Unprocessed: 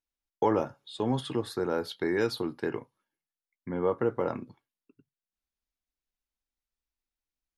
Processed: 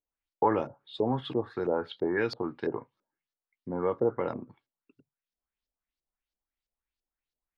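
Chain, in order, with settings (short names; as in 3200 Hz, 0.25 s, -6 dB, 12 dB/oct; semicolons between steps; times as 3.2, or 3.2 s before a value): LFO low-pass saw up 3 Hz 480–5500 Hz; dynamic EQ 5300 Hz, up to -6 dB, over -50 dBFS, Q 0.76; gain -2 dB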